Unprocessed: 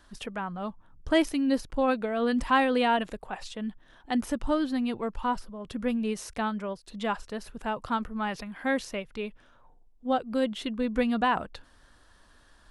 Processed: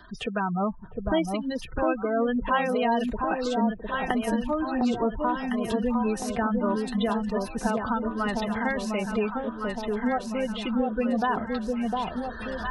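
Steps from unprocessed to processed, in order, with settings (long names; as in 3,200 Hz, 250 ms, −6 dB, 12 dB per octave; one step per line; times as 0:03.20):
camcorder AGC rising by 19 dB per second
notch comb filter 280 Hz
gate on every frequency bin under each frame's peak −20 dB strong
delay that swaps between a low-pass and a high-pass 705 ms, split 1,000 Hz, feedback 70%, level −3 dB
multiband upward and downward compressor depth 40%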